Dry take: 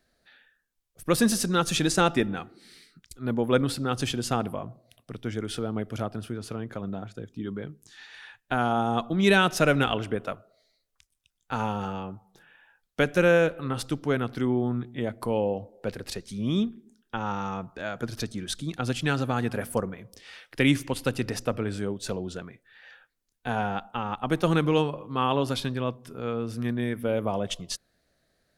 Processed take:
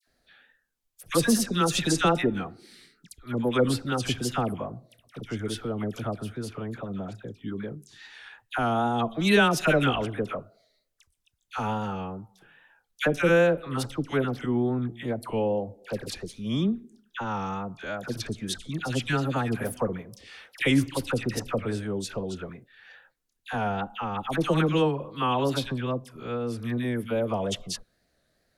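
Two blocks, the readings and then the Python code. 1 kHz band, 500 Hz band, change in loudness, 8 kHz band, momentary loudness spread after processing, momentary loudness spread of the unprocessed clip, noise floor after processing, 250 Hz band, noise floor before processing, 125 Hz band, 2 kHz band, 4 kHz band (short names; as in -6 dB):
0.0 dB, 0.0 dB, 0.0 dB, 0.0 dB, 15 LU, 15 LU, -75 dBFS, 0.0 dB, -76 dBFS, 0.0 dB, 0.0 dB, 0.0 dB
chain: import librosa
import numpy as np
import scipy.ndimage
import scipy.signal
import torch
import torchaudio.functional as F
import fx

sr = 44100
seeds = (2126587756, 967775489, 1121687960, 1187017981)

y = fx.vibrato(x, sr, rate_hz=2.4, depth_cents=60.0)
y = fx.dispersion(y, sr, late='lows', ms=75.0, hz=1300.0)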